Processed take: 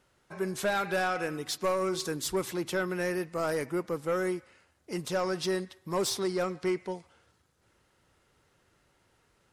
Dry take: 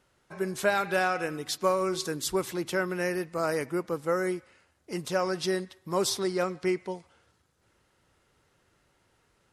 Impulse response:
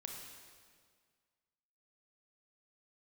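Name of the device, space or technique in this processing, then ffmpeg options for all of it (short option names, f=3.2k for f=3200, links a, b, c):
saturation between pre-emphasis and de-emphasis: -af "highshelf=f=5.1k:g=6,asoftclip=type=tanh:threshold=-21.5dB,highshelf=f=5.1k:g=-6"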